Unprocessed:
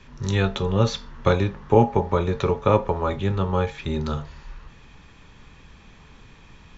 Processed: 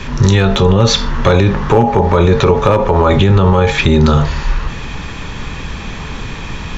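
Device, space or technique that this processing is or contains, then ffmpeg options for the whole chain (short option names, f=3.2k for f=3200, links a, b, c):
loud club master: -af "acompressor=threshold=-24dB:ratio=2,asoftclip=type=hard:threshold=-15dB,alimiter=level_in=25dB:limit=-1dB:release=50:level=0:latency=1,volume=-1dB"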